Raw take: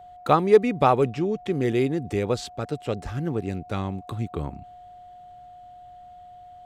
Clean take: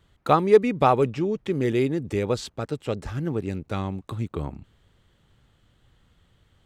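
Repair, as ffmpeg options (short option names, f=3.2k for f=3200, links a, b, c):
-af "bandreject=f=720:w=30"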